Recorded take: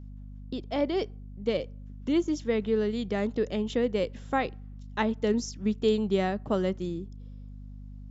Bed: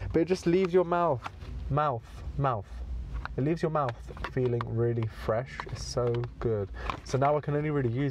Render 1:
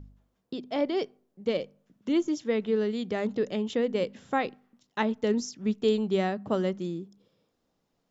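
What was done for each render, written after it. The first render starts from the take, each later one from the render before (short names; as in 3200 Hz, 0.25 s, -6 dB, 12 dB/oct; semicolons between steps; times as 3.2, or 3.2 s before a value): de-hum 50 Hz, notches 5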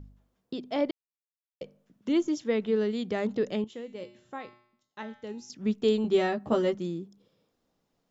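0.91–1.61 mute; 3.64–5.5 resonator 120 Hz, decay 0.64 s, harmonics odd, mix 80%; 6.03–6.75 doubler 13 ms -2.5 dB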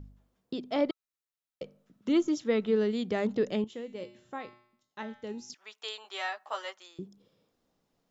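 0.71–2.72 small resonant body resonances 1300/3900 Hz, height 9 dB; 5.54–6.99 HPF 820 Hz 24 dB/oct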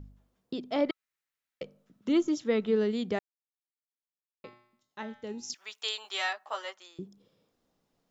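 0.86–1.63 bell 1900 Hz +9.5 dB 1.2 oct; 3.19–4.44 mute; 5.43–6.33 high shelf 2100 Hz +8.5 dB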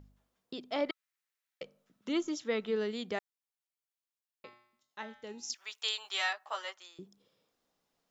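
low shelf 450 Hz -11 dB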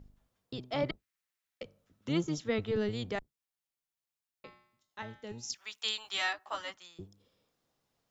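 octaver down 1 oct, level 0 dB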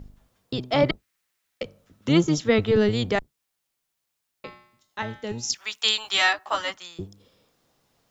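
gain +12 dB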